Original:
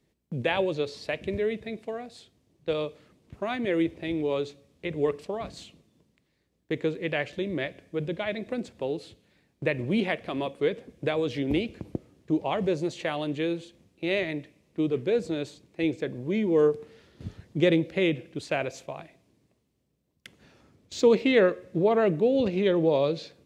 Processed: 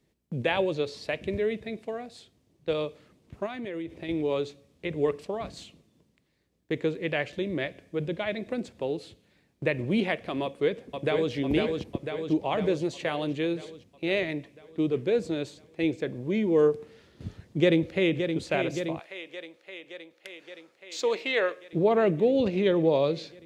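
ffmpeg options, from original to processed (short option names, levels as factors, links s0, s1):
-filter_complex "[0:a]asettb=1/sr,asplit=3[s0][s1][s2];[s0]atrim=end=3.464[s3];[s1]atrim=start=3.46:end=4.09,asetpts=PTS-STARTPTS,afade=t=in:d=0.004:c=qsin,afade=t=out:st=0.626:d=0.004:c=qsin,acompressor=threshold=0.0251:ratio=6:attack=3.2:release=140:knee=1:detection=peak[s4];[s2]atrim=start=4.086[s5];[s3][s4]acrossfade=d=0.004:c1=hsin:c2=qsin[s6];[s6][s5]acrossfade=d=0.004:c1=qsin:c2=hsin,asplit=2[s7][s8];[s8]afade=t=in:st=10.43:d=0.01,afade=t=out:st=11.33:d=0.01,aecho=0:1:500|1000|1500|2000|2500|3000|3500|4000|4500|5000:0.668344|0.434424|0.282375|0.183544|0.119304|0.0775473|0.0504058|0.0327637|0.0212964|0.0138427[s9];[s7][s9]amix=inputs=2:normalize=0,asplit=2[s10][s11];[s11]afade=t=in:st=17.25:d=0.01,afade=t=out:st=18.3:d=0.01,aecho=0:1:570|1140|1710|2280|2850|3420|3990|4560|5130|5700|6270|6840:0.421697|0.316272|0.237204|0.177903|0.133427|0.100071|0.0750529|0.0562897|0.0422173|0.0316629|0.0237472|0.0178104[s12];[s10][s12]amix=inputs=2:normalize=0,asettb=1/sr,asplit=3[s13][s14][s15];[s13]atrim=end=18.994[s16];[s14]atrim=start=18.99:end=21.73,asetpts=PTS-STARTPTS,afade=t=in:d=0.004:c=qsin,afade=t=out:st=2.736:d=0.004:c=qsin,highpass=660[s17];[s15]atrim=start=21.726[s18];[s16][s17]acrossfade=d=0.004:c1=hsin:c2=qsin[s19];[s19][s18]acrossfade=d=0.004:c1=qsin:c2=hsin"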